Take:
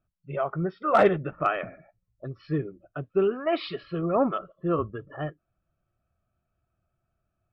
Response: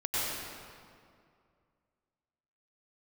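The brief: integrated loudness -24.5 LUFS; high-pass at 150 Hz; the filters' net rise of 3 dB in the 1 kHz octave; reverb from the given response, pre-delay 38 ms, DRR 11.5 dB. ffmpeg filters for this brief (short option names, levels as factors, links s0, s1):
-filter_complex "[0:a]highpass=150,equalizer=f=1000:t=o:g=4.5,asplit=2[s0][s1];[1:a]atrim=start_sample=2205,adelay=38[s2];[s1][s2]afir=irnorm=-1:irlink=0,volume=0.0944[s3];[s0][s3]amix=inputs=2:normalize=0,volume=1.19"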